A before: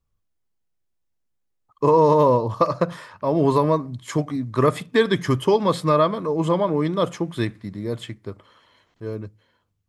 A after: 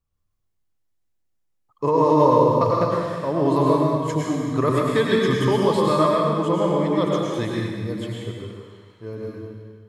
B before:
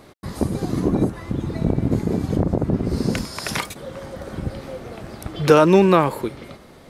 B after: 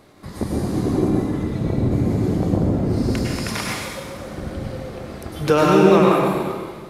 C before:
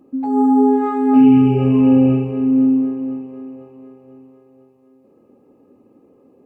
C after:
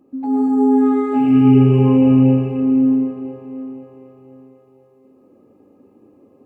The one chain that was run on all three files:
plate-style reverb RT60 1.6 s, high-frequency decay 0.95×, pre-delay 90 ms, DRR -3.5 dB; gain -4 dB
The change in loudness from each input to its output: +0.5, +1.0, 0.0 LU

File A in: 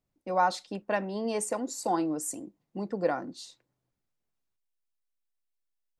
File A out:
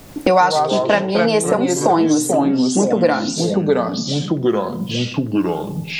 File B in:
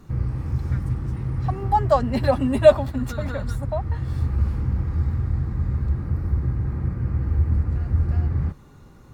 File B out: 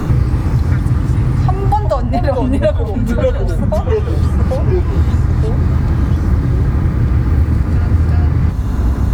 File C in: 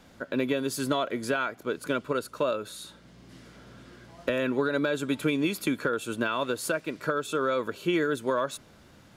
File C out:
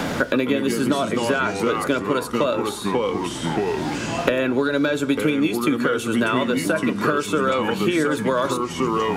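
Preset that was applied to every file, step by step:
FDN reverb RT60 0.44 s, high-frequency decay 0.6×, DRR 12 dB; echoes that change speed 85 ms, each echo -3 st, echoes 3, each echo -6 dB; three-band squash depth 100%; normalise peaks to -1.5 dBFS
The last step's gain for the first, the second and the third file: +14.0, +7.0, +5.5 dB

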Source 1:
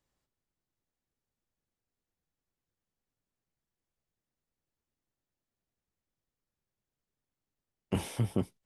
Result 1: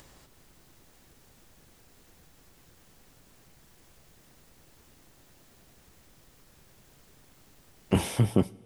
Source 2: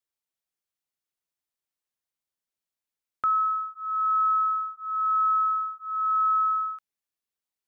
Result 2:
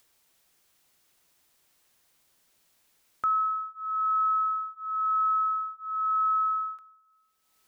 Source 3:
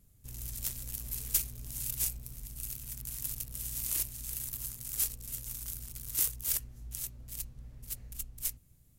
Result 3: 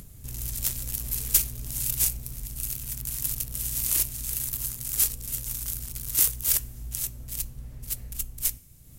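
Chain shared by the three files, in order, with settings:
upward compressor, threshold -45 dBFS; two-slope reverb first 0.42 s, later 2.8 s, from -15 dB, DRR 18.5 dB; match loudness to -27 LUFS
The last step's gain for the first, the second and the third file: +7.5, -2.0, +8.0 dB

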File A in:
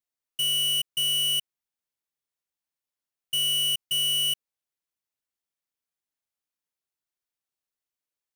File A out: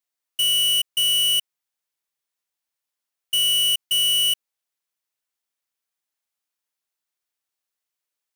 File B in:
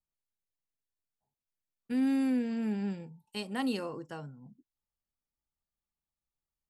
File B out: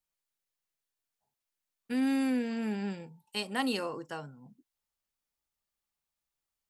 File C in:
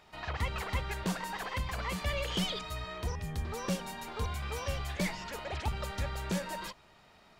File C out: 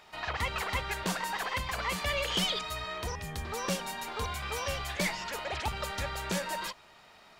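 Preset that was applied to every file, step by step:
low shelf 360 Hz -9.5 dB; gain +5.5 dB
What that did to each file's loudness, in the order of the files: +5.5, 0.0, +3.0 LU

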